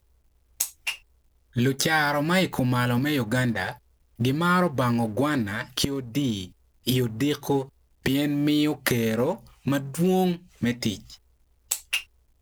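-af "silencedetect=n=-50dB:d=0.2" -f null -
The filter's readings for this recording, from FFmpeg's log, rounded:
silence_start: 0.00
silence_end: 0.60 | silence_duration: 0.60
silence_start: 1.02
silence_end: 1.53 | silence_duration: 0.51
silence_start: 3.78
silence_end: 4.18 | silence_duration: 0.39
silence_start: 6.52
silence_end: 6.84 | silence_duration: 0.32
silence_start: 7.69
silence_end: 8.04 | silence_duration: 0.35
silence_start: 11.17
silence_end: 11.70 | silence_duration: 0.53
silence_start: 12.06
silence_end: 12.42 | silence_duration: 0.36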